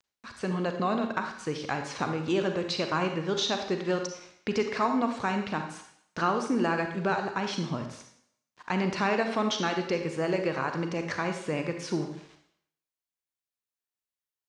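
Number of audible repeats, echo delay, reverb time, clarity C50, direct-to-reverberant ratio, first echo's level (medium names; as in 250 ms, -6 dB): no echo, no echo, 0.70 s, 6.5 dB, 5.0 dB, no echo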